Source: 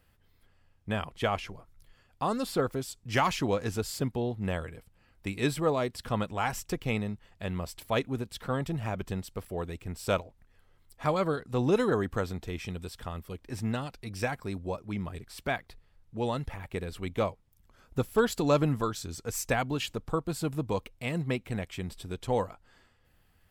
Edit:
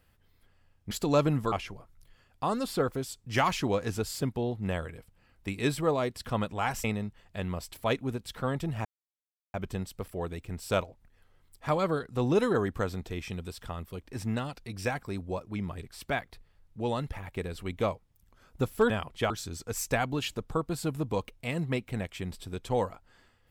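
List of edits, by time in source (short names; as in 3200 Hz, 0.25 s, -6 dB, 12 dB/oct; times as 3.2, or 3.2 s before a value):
0.91–1.31 swap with 18.27–18.88
6.63–6.9 cut
8.91 insert silence 0.69 s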